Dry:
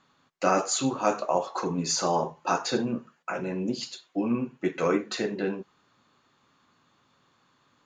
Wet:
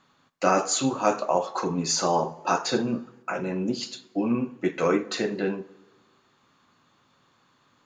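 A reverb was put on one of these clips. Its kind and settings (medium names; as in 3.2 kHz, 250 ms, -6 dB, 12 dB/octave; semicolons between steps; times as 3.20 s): plate-style reverb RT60 1.3 s, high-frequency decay 0.65×, DRR 18 dB; trim +2 dB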